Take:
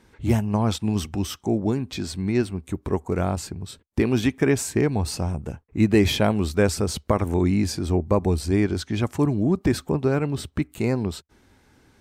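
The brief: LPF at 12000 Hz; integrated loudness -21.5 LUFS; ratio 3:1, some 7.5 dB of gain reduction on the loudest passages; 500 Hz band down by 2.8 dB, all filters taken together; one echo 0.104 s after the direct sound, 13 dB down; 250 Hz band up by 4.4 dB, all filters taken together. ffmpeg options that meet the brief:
-af "lowpass=12k,equalizer=f=250:t=o:g=7.5,equalizer=f=500:t=o:g=-7.5,acompressor=threshold=-21dB:ratio=3,aecho=1:1:104:0.224,volume=4.5dB"

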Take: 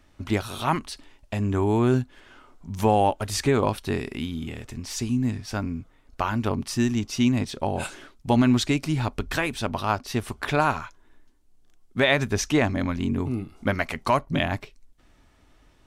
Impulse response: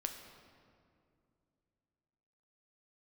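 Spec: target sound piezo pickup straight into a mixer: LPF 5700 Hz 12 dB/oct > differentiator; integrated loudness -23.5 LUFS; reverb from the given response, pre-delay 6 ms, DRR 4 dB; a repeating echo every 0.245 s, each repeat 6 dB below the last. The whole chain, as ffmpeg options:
-filter_complex "[0:a]aecho=1:1:245|490|735|980|1225|1470:0.501|0.251|0.125|0.0626|0.0313|0.0157,asplit=2[a][b];[1:a]atrim=start_sample=2205,adelay=6[c];[b][c]afir=irnorm=-1:irlink=0,volume=-3.5dB[d];[a][d]amix=inputs=2:normalize=0,lowpass=5.7k,aderivative,volume=15.5dB"

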